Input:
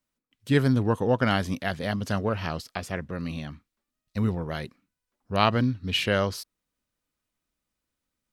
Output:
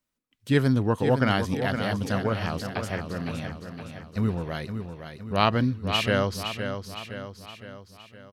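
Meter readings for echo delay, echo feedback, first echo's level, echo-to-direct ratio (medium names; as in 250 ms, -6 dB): 514 ms, 52%, -8.0 dB, -6.5 dB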